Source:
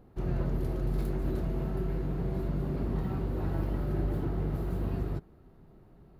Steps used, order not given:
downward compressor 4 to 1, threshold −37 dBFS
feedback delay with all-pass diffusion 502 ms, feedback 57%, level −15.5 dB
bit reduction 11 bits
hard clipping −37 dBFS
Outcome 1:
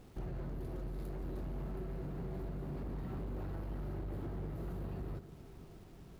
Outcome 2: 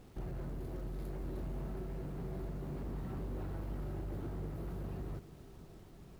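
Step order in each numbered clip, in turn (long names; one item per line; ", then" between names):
bit reduction, then downward compressor, then feedback delay with all-pass diffusion, then hard clipping
downward compressor, then hard clipping, then feedback delay with all-pass diffusion, then bit reduction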